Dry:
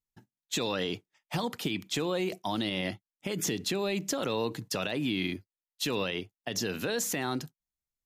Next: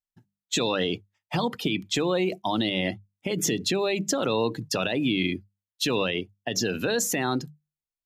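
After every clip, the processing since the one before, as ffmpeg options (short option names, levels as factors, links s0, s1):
-af "bandreject=f=50:t=h:w=6,bandreject=f=100:t=h:w=6,bandreject=f=150:t=h:w=6,bandreject=f=200:t=h:w=6,afftdn=nr=13:nf=-41,volume=2"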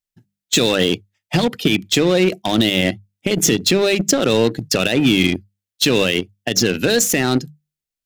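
-filter_complex "[0:a]asplit=2[s0][s1];[s1]acrusher=bits=3:mix=0:aa=0.5,volume=0.708[s2];[s0][s2]amix=inputs=2:normalize=0,equalizer=f=1000:t=o:w=0.83:g=-9.5,volume=2"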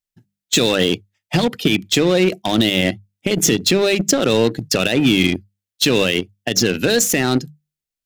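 -af anull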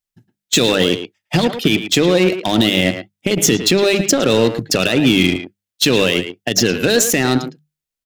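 -filter_complex "[0:a]asplit=2[s0][s1];[s1]adelay=110,highpass=300,lowpass=3400,asoftclip=type=hard:threshold=0.251,volume=0.398[s2];[s0][s2]amix=inputs=2:normalize=0,volume=1.19"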